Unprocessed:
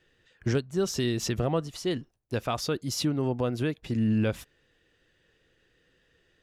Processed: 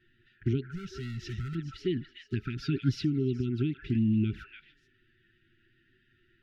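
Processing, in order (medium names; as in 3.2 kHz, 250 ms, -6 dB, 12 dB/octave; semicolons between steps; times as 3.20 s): repeats whose band climbs or falls 144 ms, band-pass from 1 kHz, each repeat 1.4 oct, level -4 dB; compression 3:1, threshold -30 dBFS, peak gain reduction 7.5 dB; distance through air 310 m; 0.63–1.55 s: overload inside the chain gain 33.5 dB; touch-sensitive flanger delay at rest 9 ms, full sweep at -28.5 dBFS; 2.56–3.01 s: comb 7.2 ms, depth 93%; FFT band-reject 410–1300 Hz; trim +5.5 dB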